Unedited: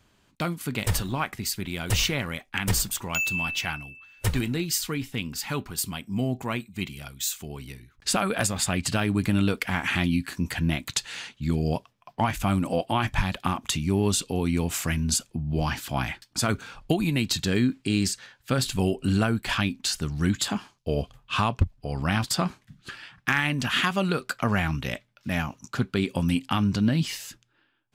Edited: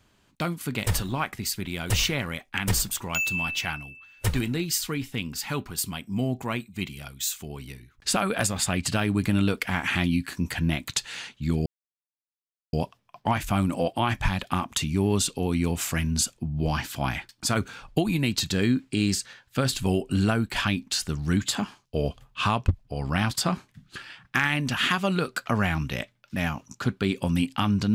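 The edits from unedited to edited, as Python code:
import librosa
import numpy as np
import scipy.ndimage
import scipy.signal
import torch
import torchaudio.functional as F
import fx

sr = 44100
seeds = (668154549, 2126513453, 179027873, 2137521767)

y = fx.edit(x, sr, fx.insert_silence(at_s=11.66, length_s=1.07), tone=tone)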